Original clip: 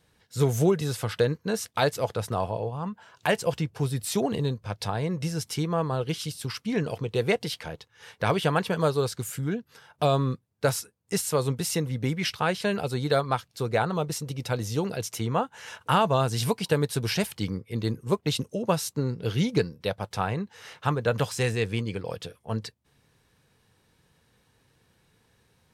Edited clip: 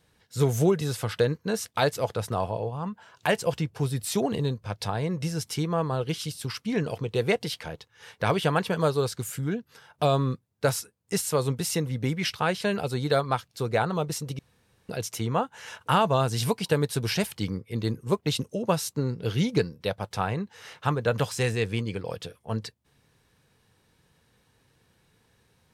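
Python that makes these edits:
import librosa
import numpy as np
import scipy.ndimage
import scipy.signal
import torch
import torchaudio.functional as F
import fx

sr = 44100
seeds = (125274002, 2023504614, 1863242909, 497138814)

y = fx.edit(x, sr, fx.room_tone_fill(start_s=14.39, length_s=0.5), tone=tone)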